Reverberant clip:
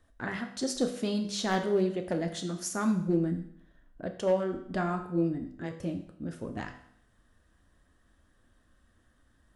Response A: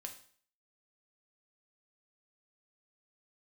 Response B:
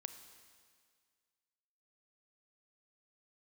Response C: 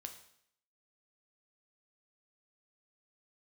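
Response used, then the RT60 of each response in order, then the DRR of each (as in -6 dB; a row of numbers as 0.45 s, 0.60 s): C; 0.50 s, 1.9 s, 0.70 s; 3.0 dB, 8.5 dB, 5.0 dB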